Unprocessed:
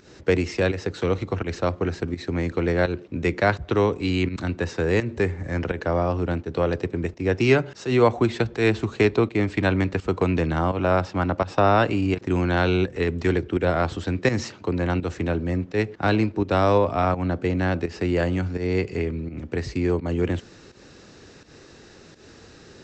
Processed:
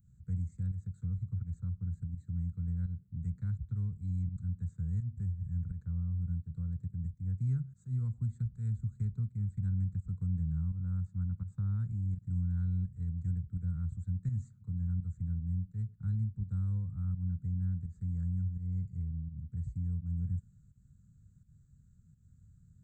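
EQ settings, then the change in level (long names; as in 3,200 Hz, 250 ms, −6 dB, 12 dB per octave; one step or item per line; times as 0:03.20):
inverse Chebyshev band-stop filter 310–5,700 Hz, stop band 40 dB
parametric band 1,400 Hz +9 dB 0.32 octaves
−5.0 dB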